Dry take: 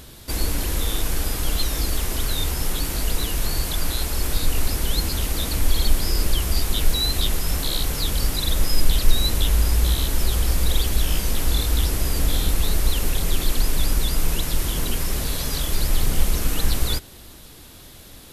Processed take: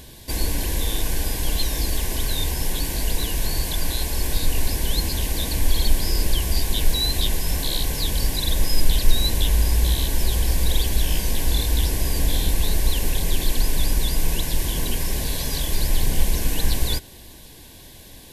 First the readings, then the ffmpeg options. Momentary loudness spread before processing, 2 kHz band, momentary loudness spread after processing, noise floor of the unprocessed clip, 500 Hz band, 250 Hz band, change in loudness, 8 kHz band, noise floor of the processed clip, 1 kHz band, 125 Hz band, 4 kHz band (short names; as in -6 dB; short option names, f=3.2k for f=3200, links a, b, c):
4 LU, -0.5 dB, 4 LU, -43 dBFS, 0.0 dB, 0.0 dB, 0.0 dB, 0.0 dB, -43 dBFS, -1.5 dB, 0.0 dB, 0.0 dB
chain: -af "asuperstop=centerf=1300:order=8:qfactor=4.1"